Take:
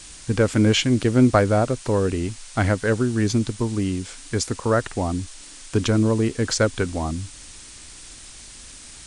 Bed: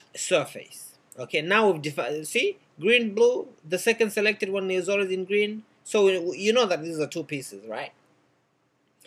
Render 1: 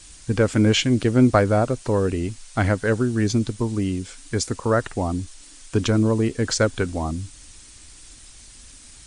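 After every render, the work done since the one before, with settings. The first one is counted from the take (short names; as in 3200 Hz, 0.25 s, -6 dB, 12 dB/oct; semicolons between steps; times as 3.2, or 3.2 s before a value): denoiser 6 dB, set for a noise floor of -42 dBFS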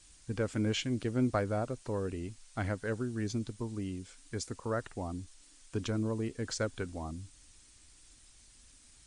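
gain -14 dB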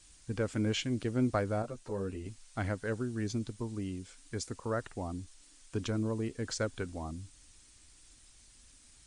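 1.62–2.26 ensemble effect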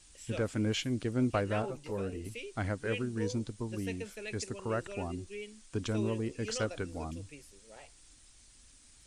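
add bed -20 dB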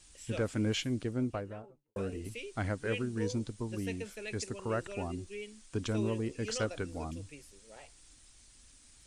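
0.76–1.96 studio fade out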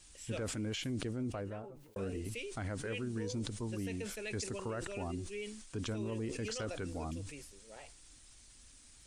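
limiter -31 dBFS, peak gain reduction 9.5 dB; sustainer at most 54 dB/s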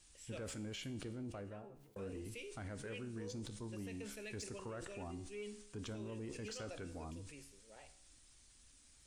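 resonator 69 Hz, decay 0.72 s, harmonics all, mix 60%; soft clip -36 dBFS, distortion -23 dB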